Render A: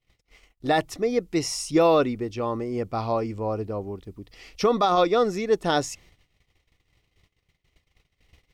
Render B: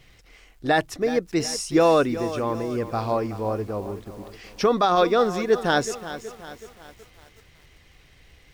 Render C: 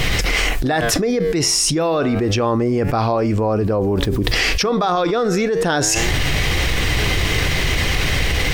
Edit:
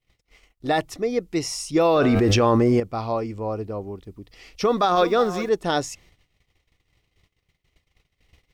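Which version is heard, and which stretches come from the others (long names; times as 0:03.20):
A
0:01.96–0:02.80: punch in from C
0:04.69–0:05.49: punch in from B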